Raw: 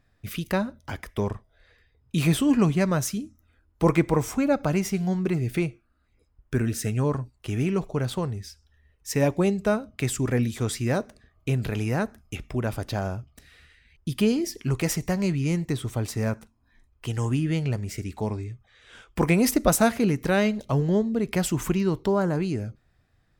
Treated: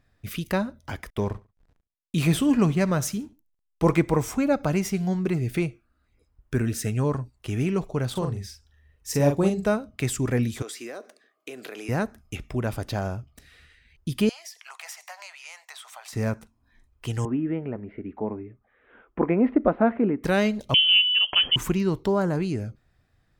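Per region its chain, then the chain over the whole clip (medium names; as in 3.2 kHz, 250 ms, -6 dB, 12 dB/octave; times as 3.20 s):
1.10–3.94 s: hysteresis with a dead band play -46.5 dBFS + feedback delay 70 ms, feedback 31%, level -21 dB
8.11–9.65 s: dynamic bell 2.2 kHz, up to -6 dB, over -46 dBFS, Q 1.6 + doubling 42 ms -5 dB
10.62–11.89 s: high-pass 320 Hz 24 dB/octave + band-stop 900 Hz, Q 6.5 + compression 10:1, threshold -33 dBFS
14.29–16.13 s: steep high-pass 690 Hz 48 dB/octave + treble shelf 8.3 kHz -4.5 dB + compression 3:1, threshold -38 dBFS
17.25–20.24 s: Gaussian low-pass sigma 4.7 samples + resonant low shelf 180 Hz -10 dB, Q 1.5
20.74–21.56 s: bass shelf 500 Hz +4.5 dB + frequency inversion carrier 3.2 kHz
whole clip: none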